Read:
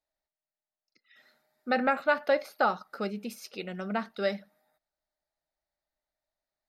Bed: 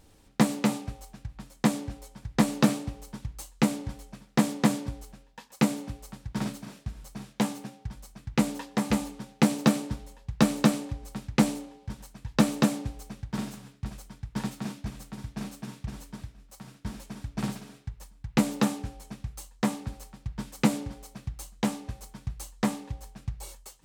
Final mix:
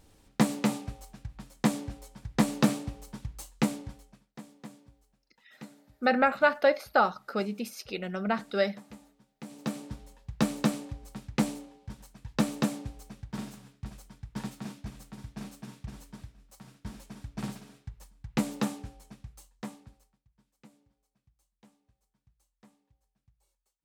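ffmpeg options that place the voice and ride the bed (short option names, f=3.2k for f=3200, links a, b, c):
-filter_complex "[0:a]adelay=4350,volume=2.5dB[a];[1:a]volume=16dB,afade=t=out:st=3.54:d=0.8:silence=0.0891251,afade=t=in:st=9.44:d=0.63:silence=0.125893,afade=t=out:st=18.6:d=1.63:silence=0.0398107[b];[a][b]amix=inputs=2:normalize=0"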